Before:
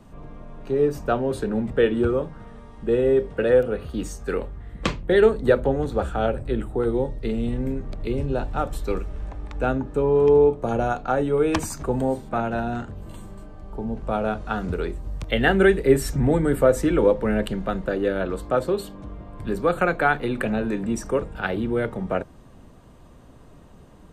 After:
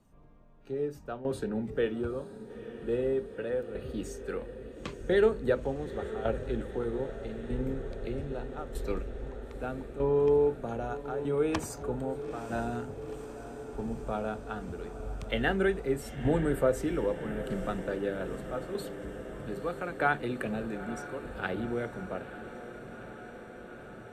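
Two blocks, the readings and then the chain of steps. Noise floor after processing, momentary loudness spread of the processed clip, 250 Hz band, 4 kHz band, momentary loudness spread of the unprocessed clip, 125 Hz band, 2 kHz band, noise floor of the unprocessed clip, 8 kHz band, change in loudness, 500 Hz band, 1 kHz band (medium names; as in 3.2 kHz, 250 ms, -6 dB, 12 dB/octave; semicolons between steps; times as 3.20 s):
-47 dBFS, 15 LU, -9.5 dB, -9.5 dB, 14 LU, -9.5 dB, -9.0 dB, -48 dBFS, -10.0 dB, -10.0 dB, -9.5 dB, -10.0 dB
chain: spectral noise reduction 10 dB; tremolo saw down 0.8 Hz, depth 75%; echo that smears into a reverb 907 ms, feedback 77%, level -13 dB; trim -6.5 dB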